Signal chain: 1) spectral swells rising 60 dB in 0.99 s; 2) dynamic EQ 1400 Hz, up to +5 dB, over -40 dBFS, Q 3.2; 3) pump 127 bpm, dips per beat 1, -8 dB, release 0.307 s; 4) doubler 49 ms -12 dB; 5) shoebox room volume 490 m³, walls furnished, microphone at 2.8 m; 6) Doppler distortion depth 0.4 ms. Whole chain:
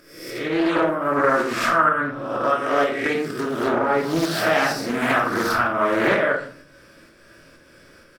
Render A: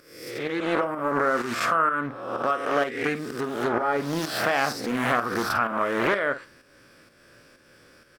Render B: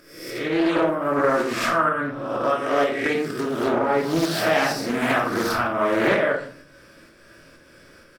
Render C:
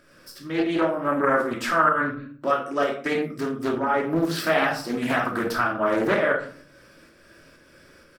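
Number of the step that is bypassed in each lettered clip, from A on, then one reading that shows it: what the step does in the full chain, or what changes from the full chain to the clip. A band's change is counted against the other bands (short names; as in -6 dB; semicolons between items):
5, 250 Hz band -1.5 dB; 2, loudness change -1.0 LU; 1, 8 kHz band -2.5 dB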